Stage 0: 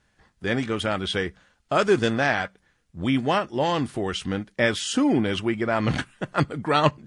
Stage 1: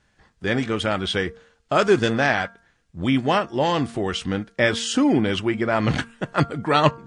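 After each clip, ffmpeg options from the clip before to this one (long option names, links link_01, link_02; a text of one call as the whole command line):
ffmpeg -i in.wav -af "lowpass=frequency=9100:width=0.5412,lowpass=frequency=9100:width=1.3066,bandreject=frequency=230.8:width_type=h:width=4,bandreject=frequency=461.6:width_type=h:width=4,bandreject=frequency=692.4:width_type=h:width=4,bandreject=frequency=923.2:width_type=h:width=4,bandreject=frequency=1154:width_type=h:width=4,bandreject=frequency=1384.8:width_type=h:width=4,bandreject=frequency=1615.6:width_type=h:width=4,volume=2.5dB" out.wav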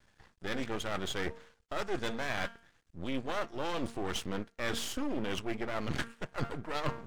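ffmpeg -i in.wav -af "aeval=exprs='max(val(0),0)':channel_layout=same,areverse,acompressor=threshold=-30dB:ratio=6,areverse" out.wav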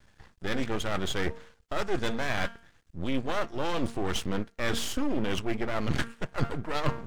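ffmpeg -i in.wav -af "lowshelf=frequency=190:gain=5,volume=4dB" out.wav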